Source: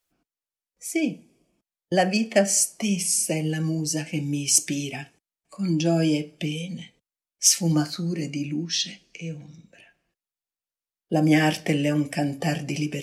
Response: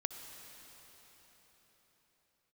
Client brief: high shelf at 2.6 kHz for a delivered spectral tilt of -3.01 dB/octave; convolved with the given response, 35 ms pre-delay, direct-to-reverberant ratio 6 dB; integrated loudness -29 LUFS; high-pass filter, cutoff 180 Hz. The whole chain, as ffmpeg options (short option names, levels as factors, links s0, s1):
-filter_complex "[0:a]highpass=180,highshelf=f=2600:g=8.5,asplit=2[s0][s1];[1:a]atrim=start_sample=2205,adelay=35[s2];[s1][s2]afir=irnorm=-1:irlink=0,volume=0.501[s3];[s0][s3]amix=inputs=2:normalize=0,volume=0.299"